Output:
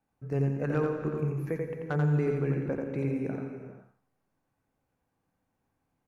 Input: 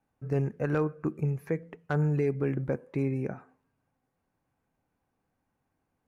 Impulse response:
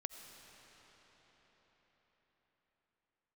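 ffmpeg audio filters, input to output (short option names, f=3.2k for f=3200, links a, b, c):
-filter_complex "[0:a]aecho=1:1:87|174|261:0.668|0.14|0.0295[a];[1:a]atrim=start_sample=2205,afade=t=out:st=0.4:d=0.01,atrim=end_sample=18081,asetrate=34398,aresample=44100[b];[a][b]afir=irnorm=-1:irlink=0"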